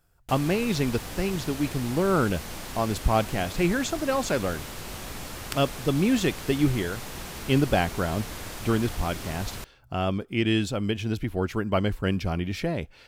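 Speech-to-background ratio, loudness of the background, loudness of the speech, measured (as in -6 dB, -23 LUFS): 10.5 dB, -37.5 LUFS, -27.0 LUFS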